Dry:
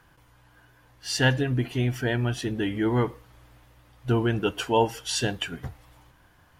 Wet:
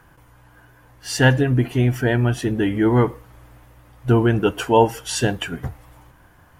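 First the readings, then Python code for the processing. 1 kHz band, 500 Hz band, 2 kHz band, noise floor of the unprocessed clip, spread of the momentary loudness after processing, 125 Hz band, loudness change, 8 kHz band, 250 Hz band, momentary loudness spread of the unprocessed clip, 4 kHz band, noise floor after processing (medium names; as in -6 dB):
+7.0 dB, +7.5 dB, +5.5 dB, -59 dBFS, 12 LU, +7.5 dB, +7.0 dB, +4.0 dB, +7.5 dB, 10 LU, +1.5 dB, -52 dBFS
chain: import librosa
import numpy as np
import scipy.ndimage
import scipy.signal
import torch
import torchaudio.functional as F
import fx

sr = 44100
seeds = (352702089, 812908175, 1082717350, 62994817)

y = fx.peak_eq(x, sr, hz=4000.0, db=-7.5, octaves=1.5)
y = y * librosa.db_to_amplitude(7.5)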